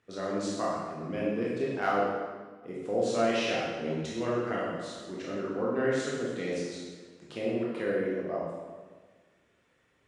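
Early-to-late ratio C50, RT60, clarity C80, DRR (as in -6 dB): -1.5 dB, 1.5 s, 1.5 dB, -6.0 dB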